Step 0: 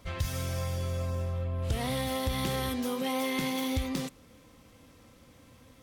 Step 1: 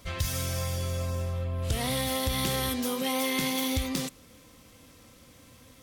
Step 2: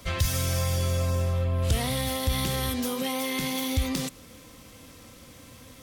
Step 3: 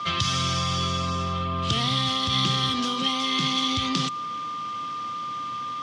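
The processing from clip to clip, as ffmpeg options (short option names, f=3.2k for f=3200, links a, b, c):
-af "highshelf=f=3.1k:g=7.5,bandreject=f=850:w=19,volume=1dB"
-filter_complex "[0:a]acrossover=split=130[a][b];[b]acompressor=threshold=-32dB:ratio=6[c];[a][c]amix=inputs=2:normalize=0,volume=5.5dB"
-filter_complex "[0:a]acrossover=split=350|3000[a][b][c];[b]acompressor=threshold=-41dB:ratio=4[d];[a][d][c]amix=inputs=3:normalize=0,aeval=exprs='val(0)+0.00708*sin(2*PI*1200*n/s)':c=same,highpass=f=130:w=0.5412,highpass=f=130:w=1.3066,equalizer=f=250:t=q:w=4:g=-5,equalizer=f=520:t=q:w=4:g=-8,equalizer=f=1.2k:t=q:w=4:g=7,equalizer=f=3.2k:t=q:w=4:g=8,lowpass=f=5.7k:w=0.5412,lowpass=f=5.7k:w=1.3066,volume=7dB"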